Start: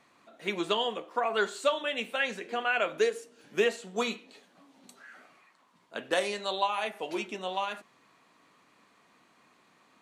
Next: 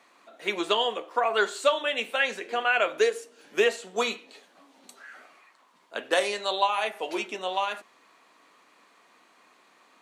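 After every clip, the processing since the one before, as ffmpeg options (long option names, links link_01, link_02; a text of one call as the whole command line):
ffmpeg -i in.wav -af "highpass=330,volume=4.5dB" out.wav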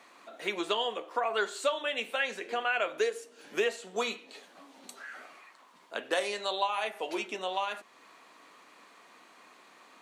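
ffmpeg -i in.wav -af "acompressor=threshold=-45dB:ratio=1.5,volume=3dB" out.wav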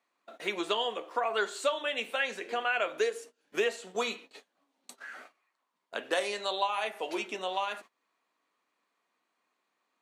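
ffmpeg -i in.wav -af "agate=range=-23dB:threshold=-48dB:ratio=16:detection=peak" out.wav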